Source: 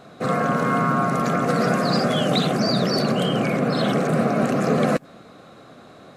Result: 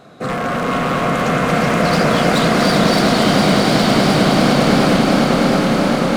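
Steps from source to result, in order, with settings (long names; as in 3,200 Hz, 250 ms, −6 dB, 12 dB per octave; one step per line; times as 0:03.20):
wave folding −16.5 dBFS
on a send: echo that builds up and dies away 102 ms, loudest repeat 8, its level −8 dB
on the sum: feedback echo with a swinging delay time 229 ms, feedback 79%, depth 148 cents, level −6.5 dB
level +2 dB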